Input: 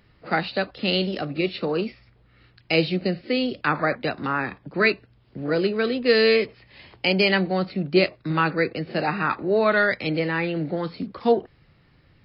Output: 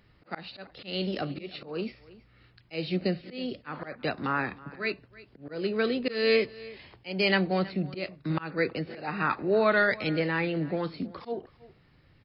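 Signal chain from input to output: auto swell 0.262 s; on a send: echo 0.323 s -20 dB; on the sum: gain -3.5 dB

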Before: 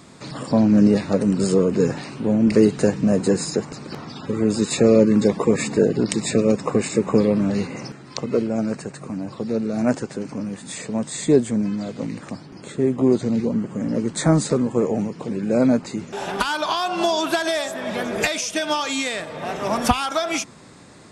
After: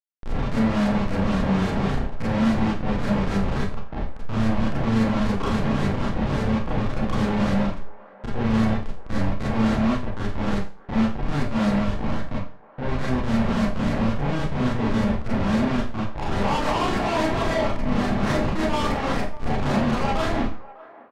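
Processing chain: delta modulation 32 kbps, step -28.5 dBFS; 7.74–8.47 expander -21 dBFS; bell 140 Hz +5 dB 0.64 oct; comb 1 ms, depth 56%; compressor 4:1, threshold -18 dBFS, peak gain reduction 9 dB; Schmitt trigger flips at -21.5 dBFS; LFO low-pass saw up 3.6 Hz 660–2300 Hz; soft clip -28 dBFS, distortion -9 dB; on a send: band-limited delay 0.6 s, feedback 31%, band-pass 860 Hz, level -17.5 dB; on the sum: Schroeder reverb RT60 0.37 s, combs from 28 ms, DRR -7 dB

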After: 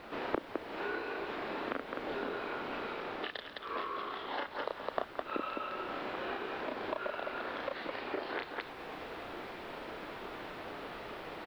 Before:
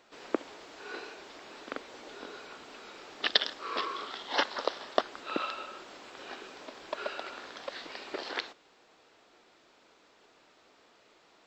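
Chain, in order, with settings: on a send: loudspeakers at several distances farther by 11 m -1 dB, 72 m -6 dB; on the sum: compressor, threshold -45 dBFS, peak gain reduction 25.5 dB; in parallel at -6 dB: requantised 8-bit, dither triangular; on the sum: vocal rider within 4 dB 0.5 s; air absorption 420 m; gain +9.5 dB

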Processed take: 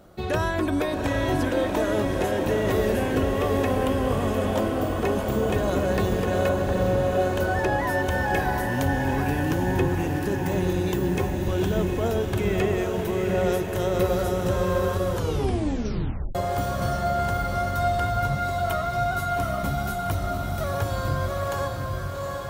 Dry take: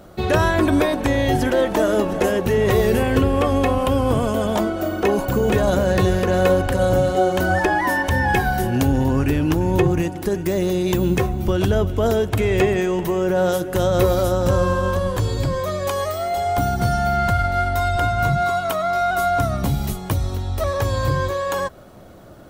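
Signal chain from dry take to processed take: 6.49–7.2 LPF 1900 Hz; diffused feedback echo 0.78 s, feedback 61%, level -3.5 dB; 15.13 tape stop 1.22 s; gain -7.5 dB

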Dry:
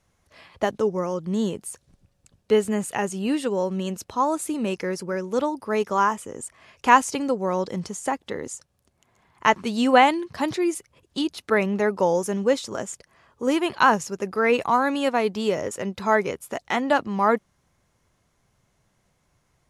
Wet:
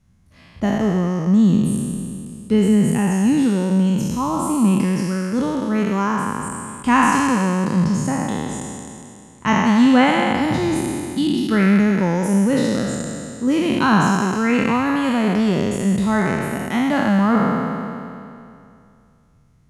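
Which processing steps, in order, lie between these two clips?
spectral trails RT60 2.49 s; resonant low shelf 320 Hz +12.5 dB, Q 1.5; gain -4 dB

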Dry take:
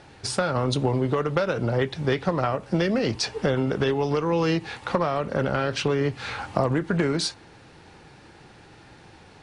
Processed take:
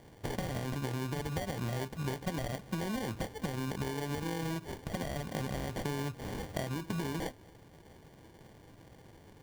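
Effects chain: bell 470 Hz -6.5 dB 0.9 oct; compressor, threshold -27 dBFS, peak gain reduction 8 dB; sample-rate reducer 1300 Hz, jitter 0%; gain -5 dB

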